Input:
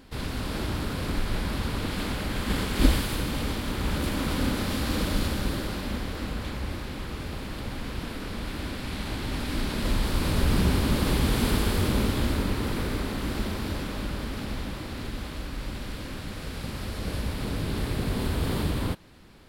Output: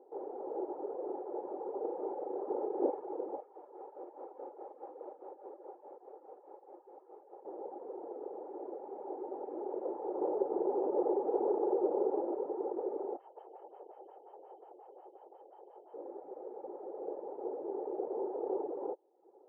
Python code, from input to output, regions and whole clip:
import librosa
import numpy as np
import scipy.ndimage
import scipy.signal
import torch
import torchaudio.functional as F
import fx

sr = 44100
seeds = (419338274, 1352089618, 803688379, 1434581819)

y = fx.chain(x, sr, fx.peak_eq(hz=3700.0, db=-3.0, octaves=2.1),
    fx.room_flutter(wall_m=6.4, rt60_s=0.38), at=(1.72, 2.9))
y = fx.chain(y, sr, fx.highpass(hz=1300.0, slope=6),
    fx.tremolo(hz=4.8, depth=0.48), at=(3.4, 7.45))
y = fx.chain(y, sr, fx.peak_eq(hz=4400.0, db=-4.5, octaves=2.2),
    fx.env_flatten(amount_pct=50), at=(10.15, 12.34))
y = fx.chain(y, sr, fx.freq_invert(carrier_hz=3100),
    fx.stagger_phaser(hz=5.6), at=(13.17, 15.94))
y = scipy.signal.sosfilt(scipy.signal.ellip(3, 1.0, 80, [360.0, 820.0], 'bandpass', fs=sr, output='sos'), y)
y = fx.dereverb_blind(y, sr, rt60_s=0.67)
y = y + 0.41 * np.pad(y, (int(2.3 * sr / 1000.0), 0))[:len(y)]
y = F.gain(torch.from_numpy(y), 1.0).numpy()